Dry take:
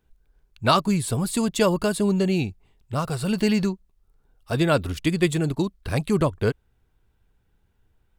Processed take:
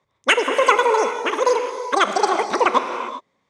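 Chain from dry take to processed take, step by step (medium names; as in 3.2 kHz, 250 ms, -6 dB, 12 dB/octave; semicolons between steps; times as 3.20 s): cabinet simulation 120–3100 Hz, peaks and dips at 130 Hz -3 dB, 240 Hz +7 dB, 470 Hz +9 dB, 880 Hz +9 dB; speed mistake 33 rpm record played at 78 rpm; gated-style reverb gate 430 ms flat, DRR 6 dB; trim +1 dB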